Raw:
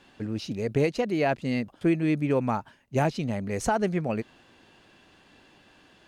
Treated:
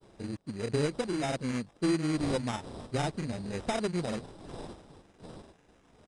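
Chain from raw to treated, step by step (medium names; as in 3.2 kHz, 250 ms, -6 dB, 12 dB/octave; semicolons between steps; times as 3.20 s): dead-time distortion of 0.25 ms; wind noise 510 Hz -42 dBFS; granulator, spray 31 ms, pitch spread up and down by 0 st; sample-and-hold 10×; resampled via 22.05 kHz; trim -4.5 dB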